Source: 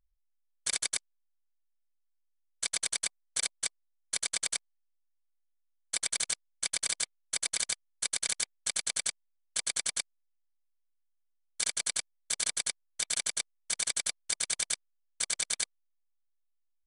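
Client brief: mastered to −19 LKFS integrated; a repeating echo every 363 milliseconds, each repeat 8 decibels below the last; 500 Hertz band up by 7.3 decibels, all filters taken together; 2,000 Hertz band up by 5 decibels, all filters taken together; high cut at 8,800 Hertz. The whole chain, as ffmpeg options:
ffmpeg -i in.wav -af "lowpass=8800,equalizer=frequency=500:width_type=o:gain=8.5,equalizer=frequency=2000:width_type=o:gain=5.5,aecho=1:1:363|726|1089|1452|1815:0.398|0.159|0.0637|0.0255|0.0102,volume=13dB" out.wav

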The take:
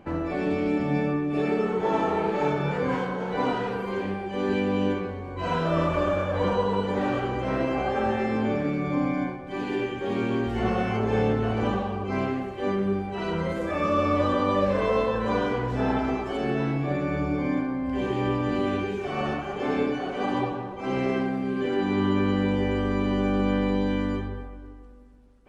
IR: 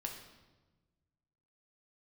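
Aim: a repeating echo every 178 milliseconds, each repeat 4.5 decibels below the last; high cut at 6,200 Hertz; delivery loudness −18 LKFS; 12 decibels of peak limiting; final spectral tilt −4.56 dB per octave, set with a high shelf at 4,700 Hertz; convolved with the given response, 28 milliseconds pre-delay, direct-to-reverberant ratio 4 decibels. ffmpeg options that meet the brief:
-filter_complex "[0:a]lowpass=6200,highshelf=frequency=4700:gain=-8,alimiter=limit=-23.5dB:level=0:latency=1,aecho=1:1:178|356|534|712|890|1068|1246|1424|1602:0.596|0.357|0.214|0.129|0.0772|0.0463|0.0278|0.0167|0.01,asplit=2[link_01][link_02];[1:a]atrim=start_sample=2205,adelay=28[link_03];[link_02][link_03]afir=irnorm=-1:irlink=0,volume=-3dB[link_04];[link_01][link_04]amix=inputs=2:normalize=0,volume=10.5dB"

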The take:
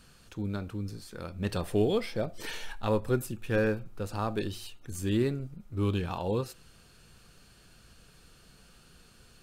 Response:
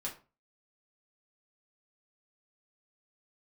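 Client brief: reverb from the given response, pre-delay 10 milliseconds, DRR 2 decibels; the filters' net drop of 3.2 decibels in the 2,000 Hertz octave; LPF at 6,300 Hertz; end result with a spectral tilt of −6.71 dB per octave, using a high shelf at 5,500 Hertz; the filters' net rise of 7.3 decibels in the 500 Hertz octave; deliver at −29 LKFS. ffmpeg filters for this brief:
-filter_complex "[0:a]lowpass=6300,equalizer=frequency=500:width_type=o:gain=9,equalizer=frequency=2000:width_type=o:gain=-4,highshelf=frequency=5500:gain=-8.5,asplit=2[link_01][link_02];[1:a]atrim=start_sample=2205,adelay=10[link_03];[link_02][link_03]afir=irnorm=-1:irlink=0,volume=-2.5dB[link_04];[link_01][link_04]amix=inputs=2:normalize=0,volume=-3.5dB"

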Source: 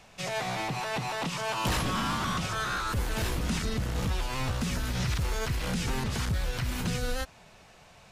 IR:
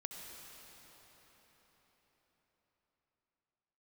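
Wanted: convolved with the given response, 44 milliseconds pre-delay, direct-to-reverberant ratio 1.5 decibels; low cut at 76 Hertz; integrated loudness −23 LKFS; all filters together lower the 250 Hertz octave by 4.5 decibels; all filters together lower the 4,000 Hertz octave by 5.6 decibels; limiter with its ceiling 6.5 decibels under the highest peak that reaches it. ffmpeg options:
-filter_complex "[0:a]highpass=76,equalizer=frequency=250:width_type=o:gain=-6.5,equalizer=frequency=4000:width_type=o:gain=-7.5,alimiter=level_in=1.5dB:limit=-24dB:level=0:latency=1,volume=-1.5dB,asplit=2[link_01][link_02];[1:a]atrim=start_sample=2205,adelay=44[link_03];[link_02][link_03]afir=irnorm=-1:irlink=0,volume=0.5dB[link_04];[link_01][link_04]amix=inputs=2:normalize=0,volume=9.5dB"

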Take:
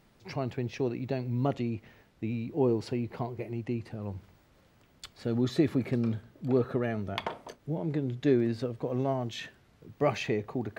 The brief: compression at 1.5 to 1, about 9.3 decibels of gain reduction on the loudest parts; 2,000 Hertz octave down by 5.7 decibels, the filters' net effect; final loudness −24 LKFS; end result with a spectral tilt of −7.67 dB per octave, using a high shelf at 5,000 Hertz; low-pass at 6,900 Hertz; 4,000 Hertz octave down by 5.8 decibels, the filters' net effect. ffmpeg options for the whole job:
ffmpeg -i in.wav -af "lowpass=6900,equalizer=frequency=2000:width_type=o:gain=-6,equalizer=frequency=4000:width_type=o:gain=-7.5,highshelf=frequency=5000:gain=6,acompressor=threshold=-46dB:ratio=1.5,volume=15.5dB" out.wav

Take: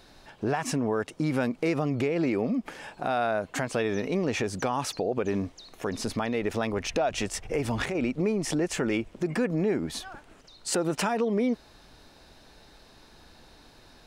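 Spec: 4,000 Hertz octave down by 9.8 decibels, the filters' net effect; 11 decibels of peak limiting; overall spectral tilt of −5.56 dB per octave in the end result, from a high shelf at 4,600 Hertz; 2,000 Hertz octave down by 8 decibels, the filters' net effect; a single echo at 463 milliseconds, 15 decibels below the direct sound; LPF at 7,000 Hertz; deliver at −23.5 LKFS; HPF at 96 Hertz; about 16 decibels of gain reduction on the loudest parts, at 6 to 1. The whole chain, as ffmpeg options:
ffmpeg -i in.wav -af "highpass=96,lowpass=7000,equalizer=frequency=2000:width_type=o:gain=-8,equalizer=frequency=4000:width_type=o:gain=-6,highshelf=frequency=4600:gain=-7,acompressor=threshold=-41dB:ratio=6,alimiter=level_in=14dB:limit=-24dB:level=0:latency=1,volume=-14dB,aecho=1:1:463:0.178,volume=25dB" out.wav

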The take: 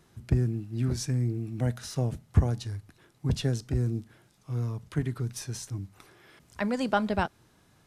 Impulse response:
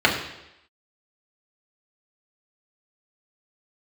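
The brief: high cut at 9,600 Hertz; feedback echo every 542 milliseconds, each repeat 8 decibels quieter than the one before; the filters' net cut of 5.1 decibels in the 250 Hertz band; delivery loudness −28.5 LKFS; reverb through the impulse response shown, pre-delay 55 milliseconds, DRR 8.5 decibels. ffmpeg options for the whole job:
-filter_complex "[0:a]lowpass=9600,equalizer=frequency=250:width_type=o:gain=-7,aecho=1:1:542|1084|1626|2168|2710:0.398|0.159|0.0637|0.0255|0.0102,asplit=2[link_01][link_02];[1:a]atrim=start_sample=2205,adelay=55[link_03];[link_02][link_03]afir=irnorm=-1:irlink=0,volume=-29dB[link_04];[link_01][link_04]amix=inputs=2:normalize=0,volume=3dB"

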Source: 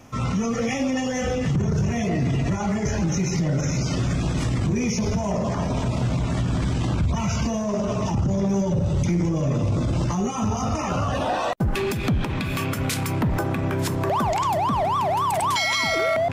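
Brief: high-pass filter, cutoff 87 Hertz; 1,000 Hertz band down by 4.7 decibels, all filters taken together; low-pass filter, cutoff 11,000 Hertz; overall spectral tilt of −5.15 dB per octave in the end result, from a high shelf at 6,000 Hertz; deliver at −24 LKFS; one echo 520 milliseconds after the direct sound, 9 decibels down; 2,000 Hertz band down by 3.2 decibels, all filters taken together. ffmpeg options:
ffmpeg -i in.wav -af "highpass=87,lowpass=11000,equalizer=frequency=1000:width_type=o:gain=-5.5,equalizer=frequency=2000:width_type=o:gain=-3.5,highshelf=frequency=6000:gain=8.5,aecho=1:1:520:0.355,volume=0.5dB" out.wav

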